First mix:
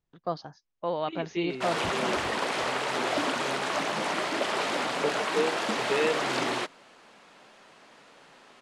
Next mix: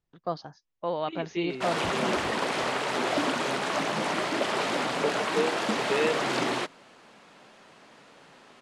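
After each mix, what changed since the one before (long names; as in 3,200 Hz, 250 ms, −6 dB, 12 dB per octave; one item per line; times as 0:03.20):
background: add low-shelf EQ 260 Hz +6.5 dB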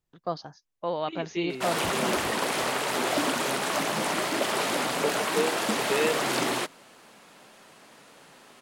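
master: remove high-frequency loss of the air 75 metres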